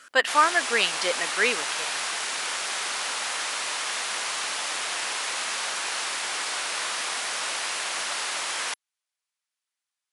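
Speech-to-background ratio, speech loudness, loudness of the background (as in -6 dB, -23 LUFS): 4.0 dB, -23.5 LUFS, -27.5 LUFS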